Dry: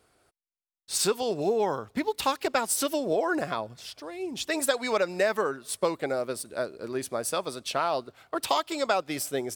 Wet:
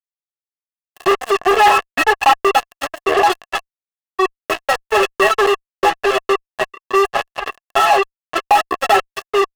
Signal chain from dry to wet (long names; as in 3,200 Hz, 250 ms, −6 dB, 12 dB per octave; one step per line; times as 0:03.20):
running median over 25 samples
automatic gain control gain up to 8.5 dB
stiff-string resonator 390 Hz, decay 0.26 s, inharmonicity 0.03
0:04.16–0:04.84: parametric band 100 Hz +10.5 dB 1.6 octaves
delay with a high-pass on its return 259 ms, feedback 41%, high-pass 2,500 Hz, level −4 dB
0:06.98–0:07.61: transient designer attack −10 dB, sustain +3 dB
reverb reduction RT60 1.3 s
0:01.56–0:02.33: parametric band 1,400 Hz +12 dB 2.8 octaves
fuzz pedal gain 45 dB, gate −41 dBFS
hollow resonant body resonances 710/1,100/1,700/2,700 Hz, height 17 dB, ringing for 20 ms
level −3 dB